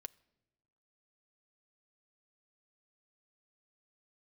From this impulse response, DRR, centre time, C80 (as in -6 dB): 12.5 dB, 1 ms, 26.0 dB